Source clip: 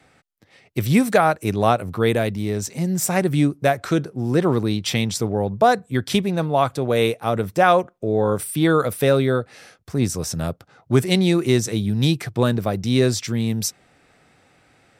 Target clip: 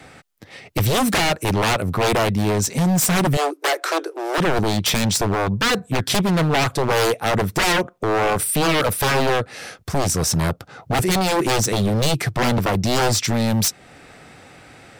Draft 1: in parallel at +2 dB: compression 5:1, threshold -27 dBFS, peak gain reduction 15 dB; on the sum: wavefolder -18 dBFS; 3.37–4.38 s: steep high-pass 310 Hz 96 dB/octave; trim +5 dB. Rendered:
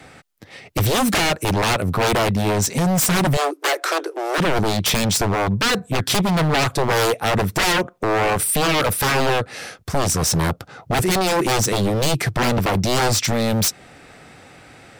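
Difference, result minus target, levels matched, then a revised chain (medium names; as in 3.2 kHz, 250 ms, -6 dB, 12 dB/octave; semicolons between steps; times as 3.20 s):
compression: peak gain reduction -6 dB
in parallel at +2 dB: compression 5:1, threshold -34.5 dBFS, peak gain reduction 21 dB; on the sum: wavefolder -18 dBFS; 3.37–4.38 s: steep high-pass 310 Hz 96 dB/octave; trim +5 dB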